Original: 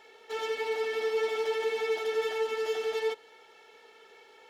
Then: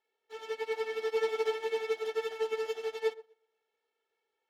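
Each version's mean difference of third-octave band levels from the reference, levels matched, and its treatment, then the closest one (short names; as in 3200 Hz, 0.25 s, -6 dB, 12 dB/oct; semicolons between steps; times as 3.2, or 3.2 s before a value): 5.5 dB: on a send: narrowing echo 0.122 s, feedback 52%, band-pass 570 Hz, level -7 dB; on the sum: upward expander 2.5:1, over -46 dBFS; gain +1 dB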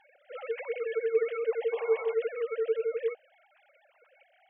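11.5 dB: sine-wave speech; painted sound noise, 1.72–2.14, 400–1200 Hz -44 dBFS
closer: first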